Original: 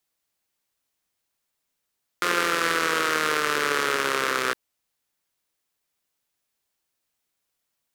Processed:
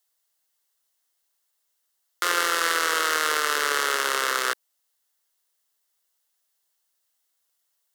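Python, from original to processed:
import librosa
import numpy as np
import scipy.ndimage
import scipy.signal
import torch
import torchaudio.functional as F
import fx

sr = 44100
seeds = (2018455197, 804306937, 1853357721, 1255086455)

y = scipy.signal.sosfilt(scipy.signal.butter(2, 470.0, 'highpass', fs=sr, output='sos'), x)
y = fx.high_shelf(y, sr, hz=4600.0, db=6.0)
y = fx.notch(y, sr, hz=2400.0, q=6.5)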